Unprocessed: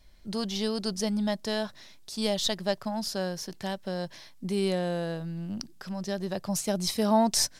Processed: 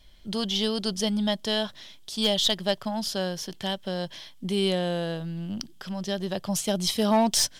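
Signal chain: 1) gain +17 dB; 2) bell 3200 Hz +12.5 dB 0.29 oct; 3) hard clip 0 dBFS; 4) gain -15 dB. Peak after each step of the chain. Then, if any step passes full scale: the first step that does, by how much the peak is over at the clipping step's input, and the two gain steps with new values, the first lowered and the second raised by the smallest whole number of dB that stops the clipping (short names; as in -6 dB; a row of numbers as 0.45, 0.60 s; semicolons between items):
+5.0, +6.0, 0.0, -15.0 dBFS; step 1, 6.0 dB; step 1 +11 dB, step 4 -9 dB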